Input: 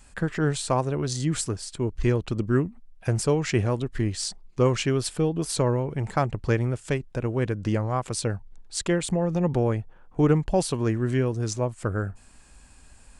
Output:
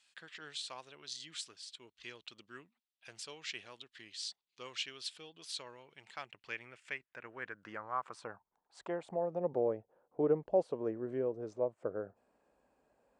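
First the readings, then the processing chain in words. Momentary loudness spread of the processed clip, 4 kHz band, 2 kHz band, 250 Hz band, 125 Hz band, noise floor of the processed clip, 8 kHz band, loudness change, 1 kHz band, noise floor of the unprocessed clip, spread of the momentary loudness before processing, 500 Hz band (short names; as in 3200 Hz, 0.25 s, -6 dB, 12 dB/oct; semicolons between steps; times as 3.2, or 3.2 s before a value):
17 LU, -8.0 dB, -11.0 dB, -18.5 dB, -28.5 dB, under -85 dBFS, -18.0 dB, -13.5 dB, -12.5 dB, -52 dBFS, 7 LU, -10.5 dB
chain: HPF 43 Hz; band-pass sweep 3500 Hz -> 530 Hz, 5.95–9.64; bell 81 Hz -10 dB 0.52 oct; gain -3.5 dB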